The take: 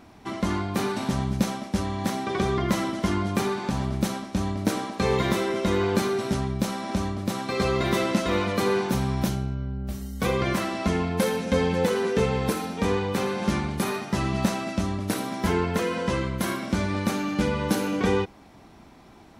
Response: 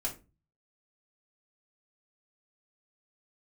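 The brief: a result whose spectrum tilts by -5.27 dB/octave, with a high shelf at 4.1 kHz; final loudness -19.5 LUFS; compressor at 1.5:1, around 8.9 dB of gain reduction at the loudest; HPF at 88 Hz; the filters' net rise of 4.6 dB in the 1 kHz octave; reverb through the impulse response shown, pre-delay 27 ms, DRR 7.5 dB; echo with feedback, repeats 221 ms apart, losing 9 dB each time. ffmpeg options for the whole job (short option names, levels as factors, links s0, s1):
-filter_complex "[0:a]highpass=88,equalizer=f=1000:t=o:g=6,highshelf=f=4100:g=-5,acompressor=threshold=0.00631:ratio=1.5,aecho=1:1:221|442|663|884:0.355|0.124|0.0435|0.0152,asplit=2[s0][s1];[1:a]atrim=start_sample=2205,adelay=27[s2];[s1][s2]afir=irnorm=-1:irlink=0,volume=0.316[s3];[s0][s3]amix=inputs=2:normalize=0,volume=4.47"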